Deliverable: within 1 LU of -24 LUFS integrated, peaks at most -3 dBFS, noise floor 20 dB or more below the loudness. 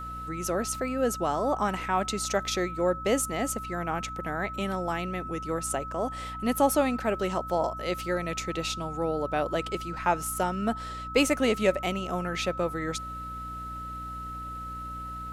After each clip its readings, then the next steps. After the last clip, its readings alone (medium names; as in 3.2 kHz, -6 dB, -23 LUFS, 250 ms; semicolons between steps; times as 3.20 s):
hum 60 Hz; highest harmonic 300 Hz; hum level -40 dBFS; steady tone 1.3 kHz; tone level -36 dBFS; loudness -29.5 LUFS; peak level -10.0 dBFS; loudness target -24.0 LUFS
-> hum notches 60/120/180/240/300 Hz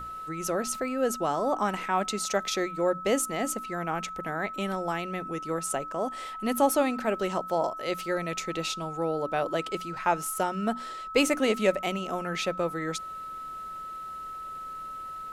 hum not found; steady tone 1.3 kHz; tone level -36 dBFS
-> band-stop 1.3 kHz, Q 30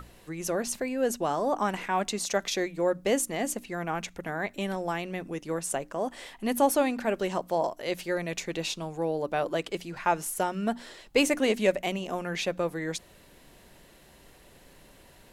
steady tone not found; loudness -29.5 LUFS; peak level -10.5 dBFS; loudness target -24.0 LUFS
-> trim +5.5 dB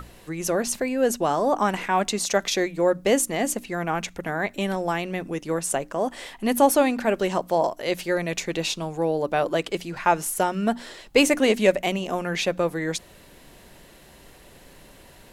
loudness -24.0 LUFS; peak level -5.0 dBFS; noise floor -50 dBFS